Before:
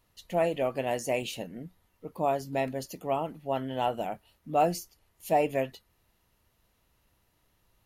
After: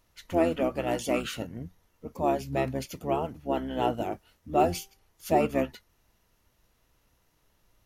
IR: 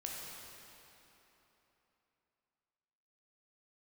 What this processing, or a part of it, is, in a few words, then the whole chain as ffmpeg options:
octave pedal: -filter_complex "[0:a]asplit=3[link_01][link_02][link_03];[link_01]afade=type=out:start_time=4.49:duration=0.02[link_04];[link_02]bandreject=frequency=391.2:width_type=h:width=4,bandreject=frequency=782.4:width_type=h:width=4,bandreject=frequency=1173.6:width_type=h:width=4,bandreject=frequency=1564.8:width_type=h:width=4,bandreject=frequency=1956:width_type=h:width=4,afade=type=in:start_time=4.49:duration=0.02,afade=type=out:start_time=5.34:duration=0.02[link_05];[link_03]afade=type=in:start_time=5.34:duration=0.02[link_06];[link_04][link_05][link_06]amix=inputs=3:normalize=0,asplit=2[link_07][link_08];[link_08]asetrate=22050,aresample=44100,atempo=2,volume=-3dB[link_09];[link_07][link_09]amix=inputs=2:normalize=0"

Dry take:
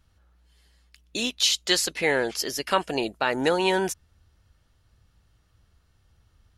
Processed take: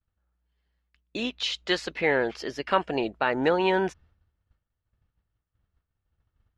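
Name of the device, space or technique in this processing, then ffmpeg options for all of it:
hearing-loss simulation: -af "lowpass=2600,agate=range=-33dB:threshold=-51dB:ratio=3:detection=peak"

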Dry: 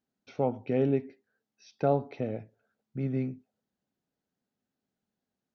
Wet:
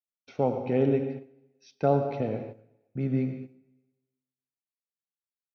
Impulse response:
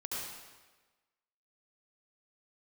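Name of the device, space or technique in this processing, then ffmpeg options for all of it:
keyed gated reverb: -filter_complex "[0:a]asettb=1/sr,asplit=3[link_01][link_02][link_03];[link_01]atrim=end=0.954[link_04];[link_02]atrim=start=0.95:end=1.84,asetpts=PTS-STARTPTS,afade=type=in:duration=0.004:curve=qsin,afade=type=out:start_time=0.886:duration=0.004:curve=qsin,equalizer=frequency=480:width=0.43:gain=-3.5[link_05];[link_03]atrim=start=1.836[link_06];[link_04][link_05]acrossfade=duration=0.004:curve1=hsin:curve2=qsin[link_07];[link_07][link_06]acrossfade=duration=0.004:curve1=qsin:curve2=hsin,agate=range=-33dB:threshold=-57dB:ratio=3:detection=peak,asplit=2[link_08][link_09];[link_09]adelay=274.1,volume=-28dB,highshelf=frequency=4000:gain=-6.17[link_10];[link_08][link_10]amix=inputs=2:normalize=0,asplit=3[link_11][link_12][link_13];[1:a]atrim=start_sample=2205[link_14];[link_12][link_14]afir=irnorm=-1:irlink=0[link_15];[link_13]apad=whole_len=256792[link_16];[link_15][link_16]sidechaingate=range=-14dB:threshold=-49dB:ratio=16:detection=peak,volume=-5.5dB[link_17];[link_11][link_17]amix=inputs=2:normalize=0"

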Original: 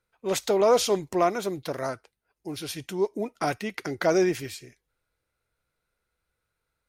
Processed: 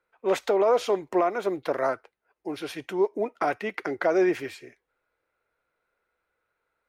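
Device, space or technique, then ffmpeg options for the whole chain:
DJ mixer with the lows and highs turned down: -filter_complex "[0:a]acrossover=split=290 2600:gain=0.158 1 0.158[link_01][link_02][link_03];[link_01][link_02][link_03]amix=inputs=3:normalize=0,alimiter=limit=-19.5dB:level=0:latency=1:release=269,volume=6dB"

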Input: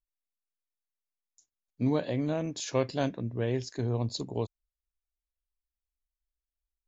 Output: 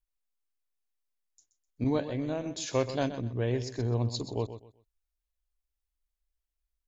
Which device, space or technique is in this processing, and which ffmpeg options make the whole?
low shelf boost with a cut just above: -filter_complex "[0:a]asettb=1/sr,asplit=3[link_01][link_02][link_03];[link_01]atrim=end=1.844[link_04];[link_02]atrim=start=1.84:end=2.46,asetpts=PTS-STARTPTS,afade=type=in:duration=0.004:curve=qsin,afade=type=out:start_time=0.616:duration=0.004:curve=qsin,agate=range=-33dB:threshold=-26dB:ratio=3:detection=peak[link_05];[link_03]atrim=start=2.456[link_06];[link_04][link_05]acrossfade=duration=0.004:curve1=hsin:curve2=qsin[link_07];[link_07][link_06]acrossfade=duration=0.004:curve1=qsin:curve2=hsin,lowshelf=frequency=75:gain=7.5,equalizer=frequency=170:width_type=o:width=0.71:gain=-5.5,aecho=1:1:127|254|381:0.251|0.0628|0.0157"

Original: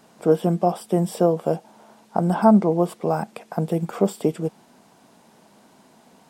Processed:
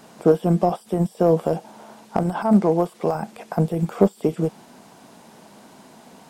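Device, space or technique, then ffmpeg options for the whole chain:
de-esser from a sidechain: -filter_complex "[0:a]asplit=2[link_01][link_02];[link_02]highpass=5800,apad=whole_len=277746[link_03];[link_01][link_03]sidechaincompress=threshold=-57dB:ratio=20:attack=4.1:release=21,asettb=1/sr,asplit=3[link_04][link_05][link_06];[link_04]atrim=end=2.204[link_07];[link_05]atrim=start=2.2:end=3.15,asetpts=PTS-STARTPTS,afade=type=in:duration=0.004:curve=qsin,afade=type=out:start_time=0.946:duration=0.004:curve=qsin,lowshelf=frequency=450:gain=-6.5[link_08];[link_06]atrim=start=3.146[link_09];[link_07][link_08]acrossfade=duration=0.004:curve1=hsin:curve2=qsin[link_10];[link_10][link_09]acrossfade=duration=0.004:curve1=qsin:curve2=hsin,volume=6.5dB"

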